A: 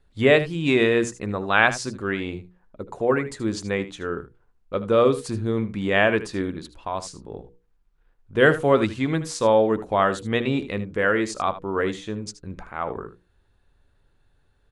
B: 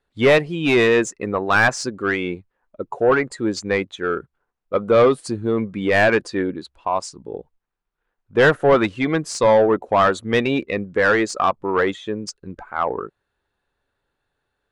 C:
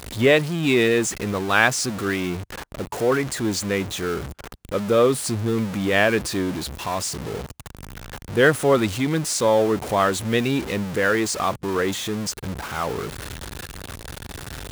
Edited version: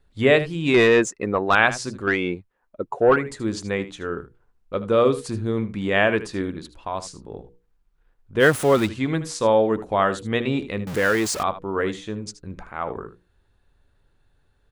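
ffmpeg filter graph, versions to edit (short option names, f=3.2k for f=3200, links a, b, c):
-filter_complex "[1:a]asplit=2[a][b];[2:a]asplit=2[c][d];[0:a]asplit=5[e][f][g][h][i];[e]atrim=end=0.742[j];[a]atrim=start=0.738:end=1.552[k];[f]atrim=start=1.548:end=2.072[l];[b]atrim=start=2.068:end=3.162[m];[g]atrim=start=3.158:end=8.43[n];[c]atrim=start=8.39:end=8.89[o];[h]atrim=start=8.85:end=10.872[p];[d]atrim=start=10.868:end=11.432[q];[i]atrim=start=11.428[r];[j][k]acrossfade=d=0.004:c1=hsin:c2=hsin[s];[s][l]acrossfade=d=0.004:c1=hsin:c2=hsin[t];[t][m]acrossfade=d=0.004:c1=hsin:c2=hsin[u];[u][n]acrossfade=d=0.004:c1=hsin:c2=hsin[v];[v][o]acrossfade=d=0.04:c1=tri:c2=tri[w];[w][p]acrossfade=d=0.04:c1=tri:c2=tri[x];[x][q]acrossfade=d=0.004:c1=hsin:c2=hsin[y];[y][r]acrossfade=d=0.004:c1=hsin:c2=hsin"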